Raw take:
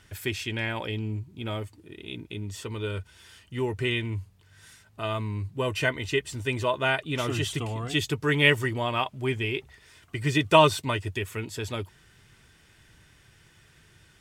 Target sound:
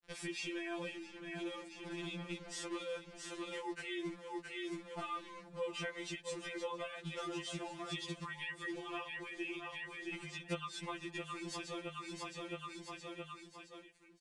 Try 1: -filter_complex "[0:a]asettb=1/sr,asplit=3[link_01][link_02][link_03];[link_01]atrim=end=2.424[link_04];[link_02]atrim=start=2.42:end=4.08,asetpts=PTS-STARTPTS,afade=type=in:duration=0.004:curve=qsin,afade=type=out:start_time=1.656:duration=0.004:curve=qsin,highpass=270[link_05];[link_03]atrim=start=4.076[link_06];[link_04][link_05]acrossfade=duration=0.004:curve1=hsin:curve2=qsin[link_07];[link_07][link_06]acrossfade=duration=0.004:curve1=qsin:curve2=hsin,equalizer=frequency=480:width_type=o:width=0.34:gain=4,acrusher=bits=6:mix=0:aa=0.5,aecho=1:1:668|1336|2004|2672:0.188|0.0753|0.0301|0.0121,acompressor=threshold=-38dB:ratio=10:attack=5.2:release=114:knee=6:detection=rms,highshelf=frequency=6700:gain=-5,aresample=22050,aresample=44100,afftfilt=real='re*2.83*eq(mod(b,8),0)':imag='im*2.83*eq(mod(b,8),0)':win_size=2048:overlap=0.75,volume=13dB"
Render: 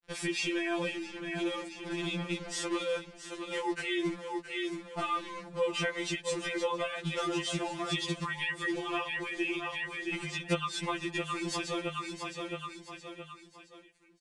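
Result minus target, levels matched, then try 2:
downward compressor: peak gain reduction −9.5 dB
-filter_complex "[0:a]asettb=1/sr,asplit=3[link_01][link_02][link_03];[link_01]atrim=end=2.424[link_04];[link_02]atrim=start=2.42:end=4.08,asetpts=PTS-STARTPTS,afade=type=in:duration=0.004:curve=qsin,afade=type=out:start_time=1.656:duration=0.004:curve=qsin,highpass=270[link_05];[link_03]atrim=start=4.076[link_06];[link_04][link_05]acrossfade=duration=0.004:curve1=hsin:curve2=qsin[link_07];[link_07][link_06]acrossfade=duration=0.004:curve1=qsin:curve2=hsin,equalizer=frequency=480:width_type=o:width=0.34:gain=4,acrusher=bits=6:mix=0:aa=0.5,aecho=1:1:668|1336|2004|2672:0.188|0.0753|0.0301|0.0121,acompressor=threshold=-48.5dB:ratio=10:attack=5.2:release=114:knee=6:detection=rms,highshelf=frequency=6700:gain=-5,aresample=22050,aresample=44100,afftfilt=real='re*2.83*eq(mod(b,8),0)':imag='im*2.83*eq(mod(b,8),0)':win_size=2048:overlap=0.75,volume=13dB"

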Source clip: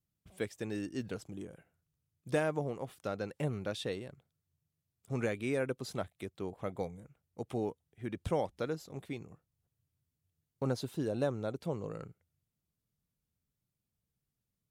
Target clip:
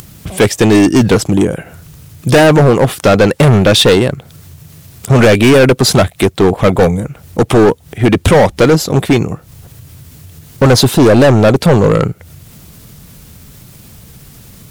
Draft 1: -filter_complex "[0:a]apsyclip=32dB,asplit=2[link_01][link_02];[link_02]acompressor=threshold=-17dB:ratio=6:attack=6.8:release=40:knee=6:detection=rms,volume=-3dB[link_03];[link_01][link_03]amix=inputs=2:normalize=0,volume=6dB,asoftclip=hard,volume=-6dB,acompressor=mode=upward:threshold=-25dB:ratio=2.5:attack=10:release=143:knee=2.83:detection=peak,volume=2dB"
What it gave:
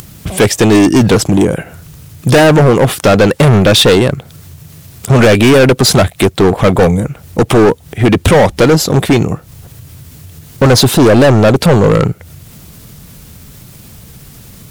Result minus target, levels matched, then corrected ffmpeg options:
downward compressor: peak gain reduction +13.5 dB
-af "apsyclip=32dB,volume=6dB,asoftclip=hard,volume=-6dB,acompressor=mode=upward:threshold=-25dB:ratio=2.5:attack=10:release=143:knee=2.83:detection=peak,volume=2dB"

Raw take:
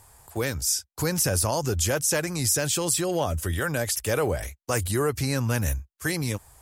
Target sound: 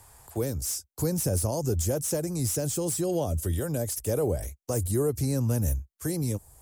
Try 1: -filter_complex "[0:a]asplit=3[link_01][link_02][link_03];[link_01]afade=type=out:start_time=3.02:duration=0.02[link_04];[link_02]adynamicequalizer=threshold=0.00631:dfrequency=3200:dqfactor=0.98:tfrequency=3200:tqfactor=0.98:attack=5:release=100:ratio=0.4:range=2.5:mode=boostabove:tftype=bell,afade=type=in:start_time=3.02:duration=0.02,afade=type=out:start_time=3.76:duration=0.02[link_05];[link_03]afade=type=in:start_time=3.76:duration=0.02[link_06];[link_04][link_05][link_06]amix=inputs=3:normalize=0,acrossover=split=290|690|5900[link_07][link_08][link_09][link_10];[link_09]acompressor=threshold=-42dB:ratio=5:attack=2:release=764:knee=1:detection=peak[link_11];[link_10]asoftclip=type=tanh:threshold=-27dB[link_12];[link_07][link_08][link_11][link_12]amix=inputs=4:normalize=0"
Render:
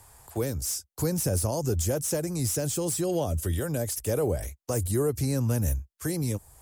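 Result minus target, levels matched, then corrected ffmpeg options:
downward compressor: peak gain reduction −5 dB
-filter_complex "[0:a]asplit=3[link_01][link_02][link_03];[link_01]afade=type=out:start_time=3.02:duration=0.02[link_04];[link_02]adynamicequalizer=threshold=0.00631:dfrequency=3200:dqfactor=0.98:tfrequency=3200:tqfactor=0.98:attack=5:release=100:ratio=0.4:range=2.5:mode=boostabove:tftype=bell,afade=type=in:start_time=3.02:duration=0.02,afade=type=out:start_time=3.76:duration=0.02[link_05];[link_03]afade=type=in:start_time=3.76:duration=0.02[link_06];[link_04][link_05][link_06]amix=inputs=3:normalize=0,acrossover=split=290|690|5900[link_07][link_08][link_09][link_10];[link_09]acompressor=threshold=-48dB:ratio=5:attack=2:release=764:knee=1:detection=peak[link_11];[link_10]asoftclip=type=tanh:threshold=-27dB[link_12];[link_07][link_08][link_11][link_12]amix=inputs=4:normalize=0"

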